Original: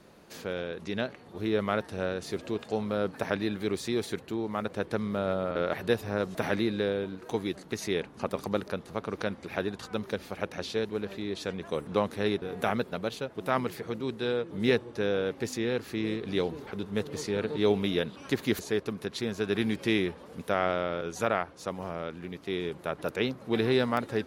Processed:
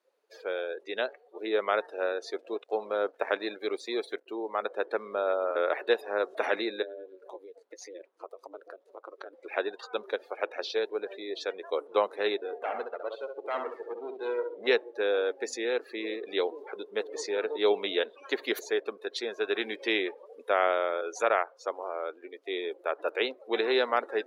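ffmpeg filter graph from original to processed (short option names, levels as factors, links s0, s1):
-filter_complex "[0:a]asettb=1/sr,asplit=3[s0][s1][s2];[s0]atrim=end=2.304[s3];[s1]atrim=start=2.3:end=4.26,asetpts=PTS-STARTPTS,afade=t=in:d=0.004:c=qsin,afade=t=out:st=1.956:d=0.004:c=qsin,lowshelf=f=87:g=9,aeval=exprs='sgn(val(0))*max(abs(val(0))-0.00501,0)':c=same[s4];[s2]atrim=start=4.256[s5];[s3][s4]acrossfade=d=0.004:c1=hsin:c2=qsin[s6];[s6][s5]acrossfade=d=0.004:c1=qsin:c2=hsin,asettb=1/sr,asplit=3[s7][s8][s9];[s7]atrim=end=6.824[s10];[s8]atrim=start=6.82:end=9.33,asetpts=PTS-STARTPTS,afade=t=in:d=0.004:c=qsin,afade=t=out:st=2.506:d=0.004:c=qsin,acompressor=threshold=0.0178:ratio=6:attack=3.2:release=140:knee=1:detection=peak,aeval=exprs='val(0)*sin(2*PI*94*n/s)':c=same[s11];[s9]atrim=start=9.326[s12];[s10][s11]acrossfade=d=0.004:c1=hsin:c2=qsin[s13];[s13][s12]acrossfade=d=0.004:c1=qsin:c2=hsin,asettb=1/sr,asplit=3[s14][s15][s16];[s14]atrim=end=12.584[s17];[s15]atrim=start=12.58:end=14.67,asetpts=PTS-STARTPTS,afade=t=in:d=0.004:c=qsin,afade=t=out:st=2.086:d=0.004:c=qsin,aemphasis=mode=reproduction:type=50fm,aeval=exprs='(tanh(25.1*val(0)+0.65)-tanh(0.65))/25.1':c=same,aecho=1:1:66|132|198|264|330:0.562|0.242|0.104|0.0447|0.0192,atrim=end_sample=92169[s18];[s16]atrim=start=14.666[s19];[s17][s18]acrossfade=d=0.004:c1=hsin:c2=qsin[s20];[s20][s19]acrossfade=d=0.004:c1=qsin:c2=hsin,highpass=f=400:w=0.5412,highpass=f=400:w=1.3066,afftdn=nr=24:nf=-43,volume=1.41"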